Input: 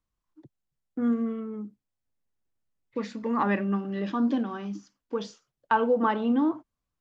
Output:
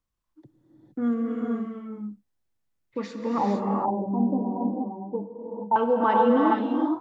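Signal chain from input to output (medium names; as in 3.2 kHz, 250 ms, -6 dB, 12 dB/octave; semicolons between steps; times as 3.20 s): 3.38–5.76 s: Chebyshev low-pass 990 Hz, order 8; dynamic bell 770 Hz, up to +5 dB, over -43 dBFS, Q 3.2; gated-style reverb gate 490 ms rising, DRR -1 dB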